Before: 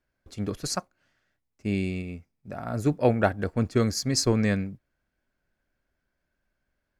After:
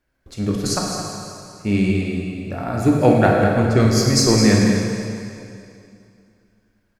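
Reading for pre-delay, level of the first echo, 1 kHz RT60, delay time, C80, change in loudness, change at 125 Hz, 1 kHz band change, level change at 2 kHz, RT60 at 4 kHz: 7 ms, -10.0 dB, 2.5 s, 213 ms, 1.0 dB, +9.0 dB, +10.0 dB, +10.5 dB, +9.5 dB, 2.3 s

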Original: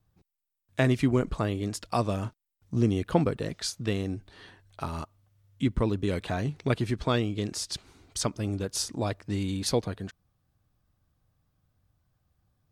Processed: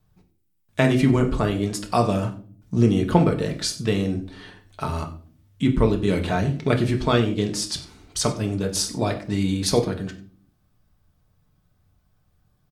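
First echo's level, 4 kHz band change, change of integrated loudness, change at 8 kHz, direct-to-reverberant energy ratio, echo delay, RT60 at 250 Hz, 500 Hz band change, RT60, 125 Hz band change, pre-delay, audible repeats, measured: -18.5 dB, +6.5 dB, +7.0 dB, +6.5 dB, 3.0 dB, 93 ms, 0.80 s, +7.0 dB, 0.45 s, +6.5 dB, 5 ms, 1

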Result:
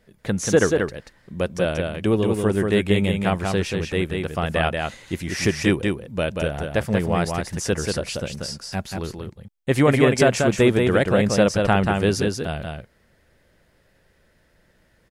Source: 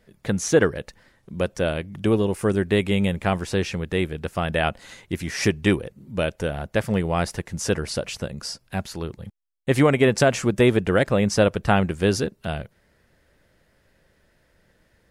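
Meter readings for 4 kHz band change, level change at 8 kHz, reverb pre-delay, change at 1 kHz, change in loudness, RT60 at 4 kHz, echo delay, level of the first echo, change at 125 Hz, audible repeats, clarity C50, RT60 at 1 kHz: +1.5 dB, +1.5 dB, no reverb, +1.5 dB, +1.5 dB, no reverb, 185 ms, -4.0 dB, +1.5 dB, 1, no reverb, no reverb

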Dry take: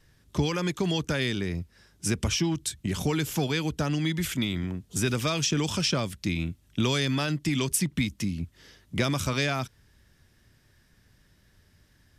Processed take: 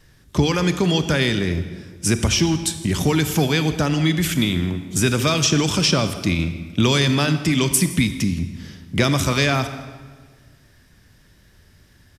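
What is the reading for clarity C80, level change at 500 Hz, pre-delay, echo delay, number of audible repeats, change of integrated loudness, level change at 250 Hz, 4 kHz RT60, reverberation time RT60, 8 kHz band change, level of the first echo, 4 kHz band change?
11.5 dB, +8.5 dB, 32 ms, 164 ms, 1, +8.5 dB, +8.5 dB, 1.2 s, 1.6 s, +8.5 dB, -21.0 dB, +8.5 dB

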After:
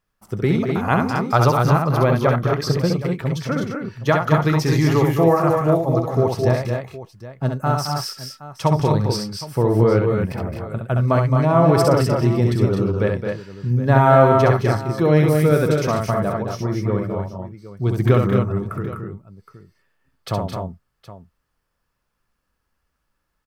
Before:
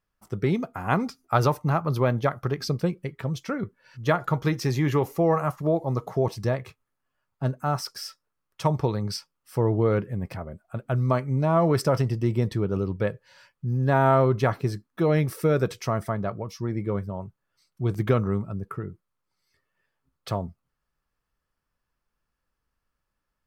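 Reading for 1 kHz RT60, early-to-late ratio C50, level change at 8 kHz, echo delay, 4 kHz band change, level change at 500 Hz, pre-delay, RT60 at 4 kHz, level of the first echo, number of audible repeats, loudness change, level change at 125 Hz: no reverb, no reverb, +7.0 dB, 66 ms, +7.0 dB, +7.5 dB, no reverb, no reverb, -4.5 dB, 4, +7.0 dB, +7.5 dB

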